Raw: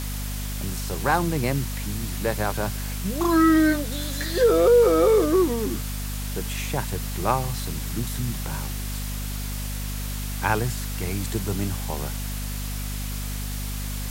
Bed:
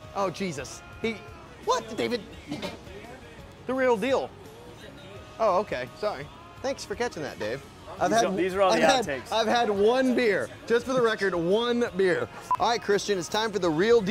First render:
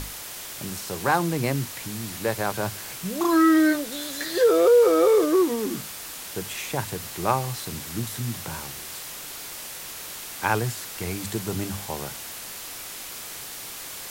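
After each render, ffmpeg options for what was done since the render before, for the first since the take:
-af "bandreject=f=50:t=h:w=6,bandreject=f=100:t=h:w=6,bandreject=f=150:t=h:w=6,bandreject=f=200:t=h:w=6,bandreject=f=250:t=h:w=6"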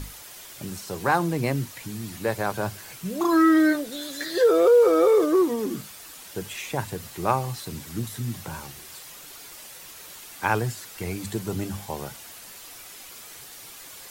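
-af "afftdn=nr=8:nf=-38"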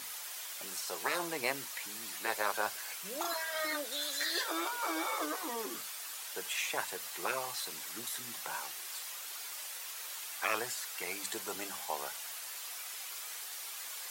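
-af "highpass=760,afftfilt=real='re*lt(hypot(re,im),0.158)':imag='im*lt(hypot(re,im),0.158)':win_size=1024:overlap=0.75"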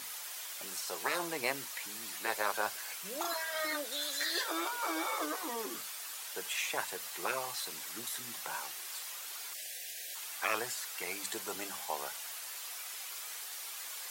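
-filter_complex "[0:a]asplit=3[a][b][c];[a]afade=t=out:st=9.53:d=0.02[d];[b]asuperstop=centerf=1100:order=20:qfactor=1.4,afade=t=in:st=9.53:d=0.02,afade=t=out:st=10.14:d=0.02[e];[c]afade=t=in:st=10.14:d=0.02[f];[d][e][f]amix=inputs=3:normalize=0"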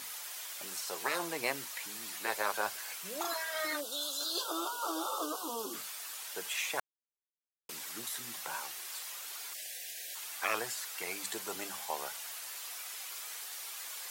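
-filter_complex "[0:a]asplit=3[a][b][c];[a]afade=t=out:st=3.8:d=0.02[d];[b]asuperstop=centerf=2000:order=8:qfactor=1.5,afade=t=in:st=3.8:d=0.02,afade=t=out:st=5.72:d=0.02[e];[c]afade=t=in:st=5.72:d=0.02[f];[d][e][f]amix=inputs=3:normalize=0,asplit=3[g][h][i];[g]atrim=end=6.8,asetpts=PTS-STARTPTS,afade=t=out:st=6.796:d=0.004:c=hsin[j];[h]atrim=start=6.8:end=7.69,asetpts=PTS-STARTPTS,volume=0[k];[i]atrim=start=7.69,asetpts=PTS-STARTPTS,afade=t=in:d=0.004:c=hsin[l];[j][k][l]concat=n=3:v=0:a=1"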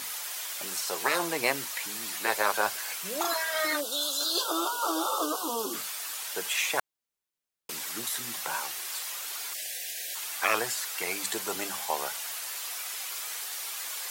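-af "volume=7dB"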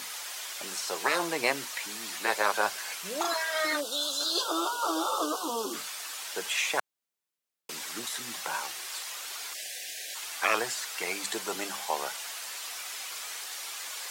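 -filter_complex "[0:a]acrossover=split=9000[a][b];[b]acompressor=threshold=-46dB:ratio=4:attack=1:release=60[c];[a][c]amix=inputs=2:normalize=0,highpass=140"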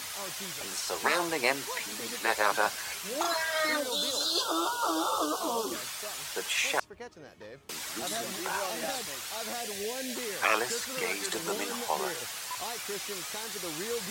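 -filter_complex "[1:a]volume=-15.5dB[a];[0:a][a]amix=inputs=2:normalize=0"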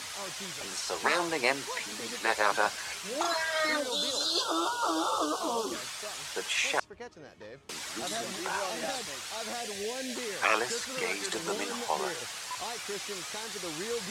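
-af "lowpass=9k"

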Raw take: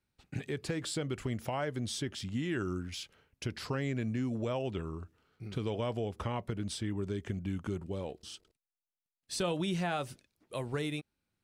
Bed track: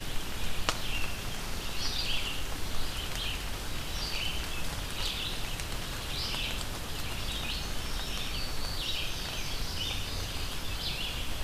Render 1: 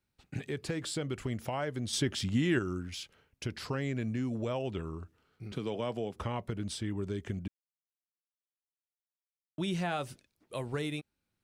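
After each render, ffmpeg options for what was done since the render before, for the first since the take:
-filter_complex "[0:a]asettb=1/sr,asplit=3[a][b][c];[a]atrim=end=5.524[d];[b]atrim=start=5.52:end=6.16,asetpts=PTS-STARTPTS,afade=t=in:d=0.004:c=qsin,afade=t=out:st=0.636:d=0.004:c=qsin,highpass=f=130:w=0.5412,highpass=f=130:w=1.3066[e];[c]atrim=start=6.156[f];[d][e]acrossfade=d=0.004:c1=hsin:c2=qsin[g];[g][f]acrossfade=d=0.004:c1=qsin:c2=hsin,asplit=5[h][i][j][k][l];[h]atrim=end=1.932[m];[i]atrim=start=1.928:end=2.592,asetpts=PTS-STARTPTS,volume=6dB[n];[j]atrim=start=2.588:end=7.48,asetpts=PTS-STARTPTS,afade=t=out:st=4.888:d=0.004:c=hsin[o];[k]atrim=start=7.48:end=9.58,asetpts=PTS-STARTPTS,volume=0[p];[l]atrim=start=9.58,asetpts=PTS-STARTPTS,afade=t=in:d=0.004:c=hsin[q];[m][n]acrossfade=d=0.004:c1=hsin:c2=hsin[r];[o][p][q]concat=n=3:v=0:a=1[s];[r][s]acrossfade=d=0.004:c1=hsin:c2=hsin"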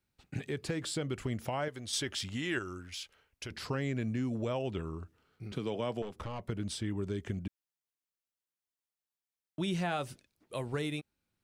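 -filter_complex "[0:a]asettb=1/sr,asplit=3[a][b][c];[a]atrim=end=1.684[d];[b]atrim=start=1.68:end=3.51,asetpts=PTS-STARTPTS,afade=t=in:d=0.004:c=qsin,afade=t=out:st=1.826:d=0.004:c=qsin,equalizer=f=170:t=o:w=2.5:g=-11[e];[c]atrim=start=3.506[f];[d][e]acrossfade=d=0.004:c1=hsin:c2=qsin[g];[g][f]acrossfade=d=0.004:c1=qsin:c2=hsin,asettb=1/sr,asplit=3[h][i][j];[h]atrim=end=6.024[k];[i]atrim=start=6.02:end=6.48,asetpts=PTS-STARTPTS,afade=t=in:d=0.004:c=qsin,afade=t=out:st=0.456:d=0.004:c=qsin,aeval=exprs='(tanh(56.2*val(0)+0.5)-tanh(0.5))/56.2':c=same[l];[j]atrim=start=6.476[m];[k][l]acrossfade=d=0.004:c1=hsin:c2=qsin[n];[n][m]acrossfade=d=0.004:c1=qsin:c2=hsin"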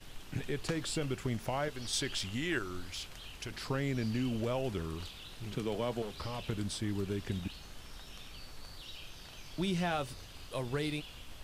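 -filter_complex "[1:a]volume=-14.5dB[a];[0:a][a]amix=inputs=2:normalize=0"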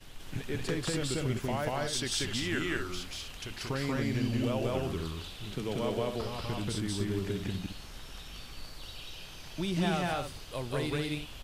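-af "aecho=1:1:186.6|247.8:1|0.447"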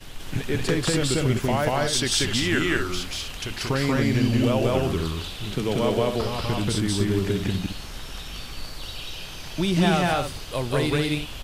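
-af "volume=9.5dB"

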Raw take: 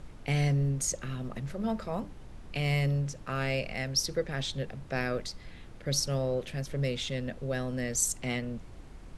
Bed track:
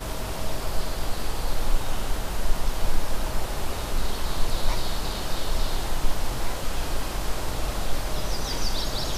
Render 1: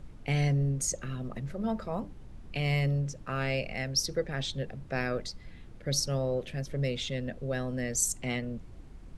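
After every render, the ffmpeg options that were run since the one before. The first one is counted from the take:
-af "afftdn=nr=6:nf=-48"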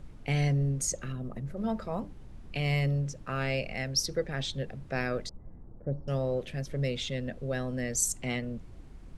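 -filter_complex "[0:a]asettb=1/sr,asplit=3[a][b][c];[a]atrim=end=1.124[d];[b]atrim=start=1.12:end=1.57,asetpts=PTS-STARTPTS,afade=t=in:d=0.004:c=qsin,afade=t=out:st=0.446:d=0.004:c=qsin,equalizer=f=3.6k:t=o:w=2.9:g=-8.5[e];[c]atrim=start=1.566[f];[d][e]acrossfade=d=0.004:c1=hsin:c2=qsin[g];[g][f]acrossfade=d=0.004:c1=qsin:c2=hsin,asettb=1/sr,asplit=3[h][i][j];[h]atrim=end=5.294[k];[i]atrim=start=5.29:end=6.08,asetpts=PTS-STARTPTS,afade=t=in:d=0.004:c=qsin,afade=t=out:st=0.786:d=0.004:c=qsin,lowpass=f=1k:w=0.5412,lowpass=f=1k:w=1.3066[l];[j]atrim=start=6.076[m];[k][l]acrossfade=d=0.004:c1=hsin:c2=qsin[n];[n][m]acrossfade=d=0.004:c1=qsin:c2=hsin"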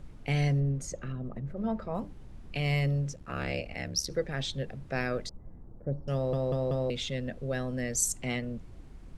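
-filter_complex "[0:a]asettb=1/sr,asplit=3[a][b][c];[a]atrim=end=0.604[d];[b]atrim=start=0.6:end=1.95,asetpts=PTS-STARTPTS,afade=t=in:d=0.004:c=qsin,afade=t=out:st=1.346:d=0.004:c=qsin,lowpass=f=2k:p=1[e];[c]atrim=start=1.946[f];[d][e]acrossfade=d=0.004:c1=hsin:c2=qsin[g];[g][f]acrossfade=d=0.004:c1=qsin:c2=hsin,asettb=1/sr,asplit=3[h][i][j];[h]atrim=end=3.154[k];[i]atrim=start=3.15:end=4.11,asetpts=PTS-STARTPTS,afade=t=in:d=0.004:c=qsin,afade=t=out:st=0.956:d=0.004:c=qsin,aeval=exprs='val(0)*sin(2*PI*36*n/s)':c=same[l];[j]atrim=start=4.106[m];[k][l]acrossfade=d=0.004:c1=hsin:c2=qsin[n];[n][m]acrossfade=d=0.004:c1=qsin:c2=hsin,asplit=5[o][p][q][r][s];[o]atrim=end=6.332[t];[p]atrim=start=6.138:end=6.332[u];[q]atrim=start=6.138:end=6.332[v];[r]atrim=start=6.138:end=6.332[w];[s]atrim=start=6.898[x];[t][u]acrossfade=d=0.004:c1=hsin:c2=hsin[y];[y][v]acrossfade=d=0.004:c1=hsin:c2=hsin[z];[z][w]acrossfade=d=0.004:c1=hsin:c2=hsin[aa];[aa][x]acrossfade=d=0.004:c1=hsin:c2=hsin"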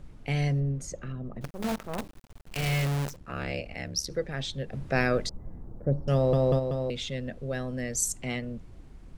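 -filter_complex "[0:a]asettb=1/sr,asplit=3[a][b][c];[a]atrim=end=1.414[d];[b]atrim=start=1.41:end=3.17,asetpts=PTS-STARTPTS,afade=t=in:d=0.004:c=qsin,afade=t=out:st=1.756:d=0.004:c=qsin,acrusher=bits=6:dc=4:mix=0:aa=0.000001[e];[c]atrim=start=3.166[f];[d][e]acrossfade=d=0.004:c1=hsin:c2=qsin[g];[g][f]acrossfade=d=0.004:c1=qsin:c2=hsin,asplit=3[h][i][j];[h]afade=t=out:st=4.72:d=0.02[k];[i]acontrast=63,afade=t=in:st=4.72:d=0.02,afade=t=out:st=6.58:d=0.02[l];[j]afade=t=in:st=6.58:d=0.02[m];[k][l][m]amix=inputs=3:normalize=0"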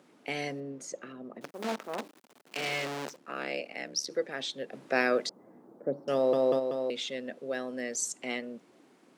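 -filter_complex "[0:a]acrossover=split=7500[a][b];[b]acompressor=threshold=-51dB:ratio=4:attack=1:release=60[c];[a][c]amix=inputs=2:normalize=0,highpass=f=260:w=0.5412,highpass=f=260:w=1.3066"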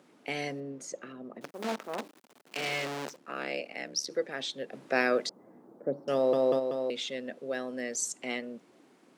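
-af anull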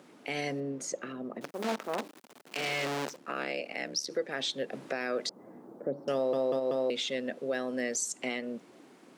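-filter_complex "[0:a]asplit=2[a][b];[b]acompressor=threshold=-37dB:ratio=6,volume=-2dB[c];[a][c]amix=inputs=2:normalize=0,alimiter=limit=-21.5dB:level=0:latency=1:release=123"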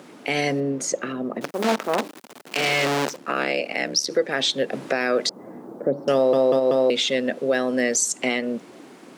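-af "volume=11dB"

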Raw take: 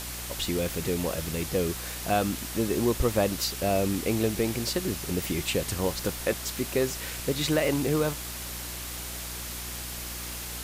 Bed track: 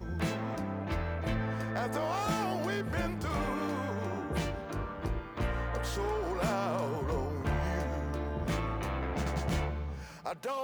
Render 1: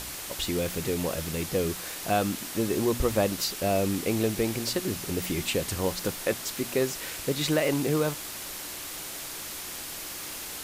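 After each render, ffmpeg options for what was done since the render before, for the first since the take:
-af "bandreject=f=60:t=h:w=4,bandreject=f=120:t=h:w=4,bandreject=f=180:t=h:w=4,bandreject=f=240:t=h:w=4"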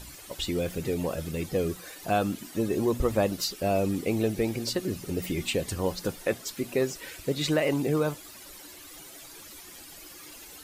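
-af "afftdn=nr=13:nf=-38"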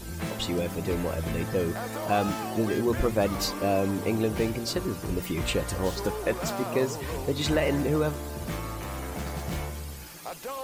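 -filter_complex "[1:a]volume=-1dB[a];[0:a][a]amix=inputs=2:normalize=0"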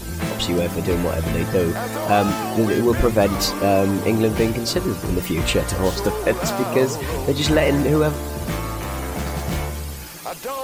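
-af "volume=8dB"

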